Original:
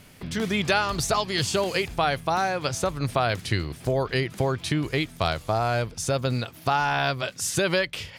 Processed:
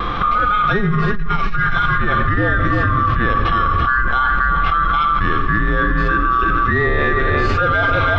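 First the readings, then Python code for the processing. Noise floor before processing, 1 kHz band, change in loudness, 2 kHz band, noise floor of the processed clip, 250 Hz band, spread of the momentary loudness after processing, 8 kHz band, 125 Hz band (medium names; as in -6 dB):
-47 dBFS, +11.5 dB, +9.0 dB, +12.5 dB, -17 dBFS, +7.0 dB, 2 LU, under -20 dB, +8.5 dB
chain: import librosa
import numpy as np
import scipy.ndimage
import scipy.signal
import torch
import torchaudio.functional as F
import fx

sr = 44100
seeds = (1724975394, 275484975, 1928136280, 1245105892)

p1 = fx.band_swap(x, sr, width_hz=1000)
p2 = scipy.signal.sosfilt(scipy.signal.butter(4, 3500.0, 'lowpass', fs=sr, output='sos'), p1)
p3 = fx.tilt_eq(p2, sr, slope=-2.5)
p4 = fx.hpss(p3, sr, part='percussive', gain_db=-15)
p5 = fx.low_shelf(p4, sr, hz=160.0, db=10.5)
p6 = 10.0 ** (-9.5 / 20.0) * np.tanh(p5 / 10.0 ** (-9.5 / 20.0))
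p7 = fx.vibrato(p6, sr, rate_hz=0.6, depth_cents=12.0)
p8 = p7 + fx.echo_single(p7, sr, ms=331, db=-9.0, dry=0)
p9 = fx.room_shoebox(p8, sr, seeds[0], volume_m3=2300.0, walls='mixed', distance_m=0.83)
p10 = fx.env_flatten(p9, sr, amount_pct=100)
y = F.gain(torch.from_numpy(p10), -8.0).numpy()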